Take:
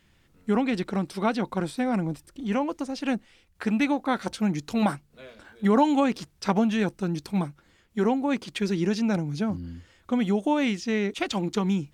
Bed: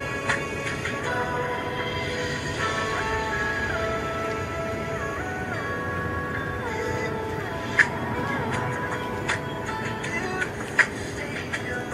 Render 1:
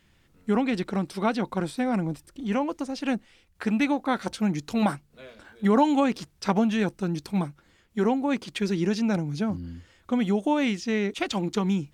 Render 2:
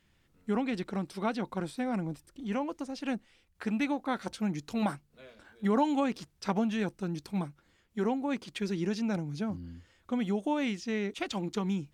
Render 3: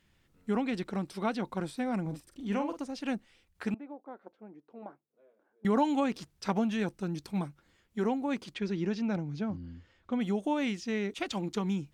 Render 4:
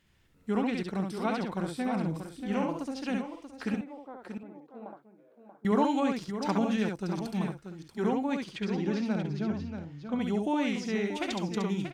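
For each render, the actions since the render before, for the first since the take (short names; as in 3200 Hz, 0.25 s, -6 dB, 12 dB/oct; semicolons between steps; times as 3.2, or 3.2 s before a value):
nothing audible
gain -6.5 dB
2.01–2.84 doubler 45 ms -7.5 dB; 3.74–5.65 ladder band-pass 520 Hz, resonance 25%; 8.54–10.21 air absorption 110 m
tapped delay 68/634/689 ms -3.5/-9/-16 dB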